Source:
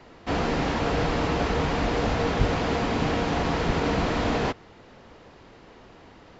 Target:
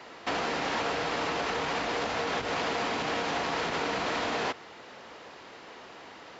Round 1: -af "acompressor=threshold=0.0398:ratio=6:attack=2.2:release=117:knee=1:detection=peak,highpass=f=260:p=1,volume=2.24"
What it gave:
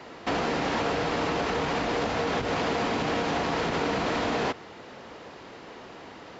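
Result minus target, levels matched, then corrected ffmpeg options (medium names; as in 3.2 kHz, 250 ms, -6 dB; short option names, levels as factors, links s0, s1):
250 Hz band +4.0 dB
-af "acompressor=threshold=0.0398:ratio=6:attack=2.2:release=117:knee=1:detection=peak,highpass=f=780:p=1,volume=2.24"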